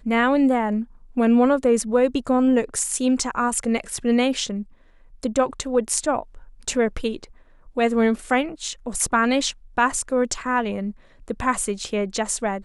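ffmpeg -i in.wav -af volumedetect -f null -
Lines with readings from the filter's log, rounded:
mean_volume: -22.3 dB
max_volume: -3.7 dB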